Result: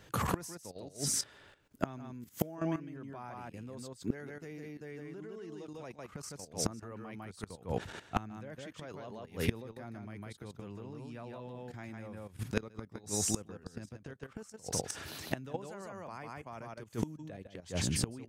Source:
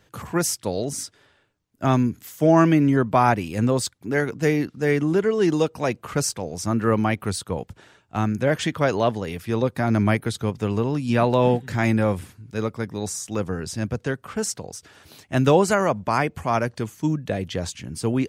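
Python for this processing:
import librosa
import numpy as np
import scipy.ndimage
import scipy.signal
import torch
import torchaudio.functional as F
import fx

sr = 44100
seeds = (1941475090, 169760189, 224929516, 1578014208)

y = x + 10.0 ** (-3.5 / 20.0) * np.pad(x, (int(153 * sr / 1000.0), 0))[:len(x)]
y = fx.level_steps(y, sr, step_db=13)
y = fx.gate_flip(y, sr, shuts_db=-24.0, range_db=-26)
y = y * 10.0 ** (7.0 / 20.0)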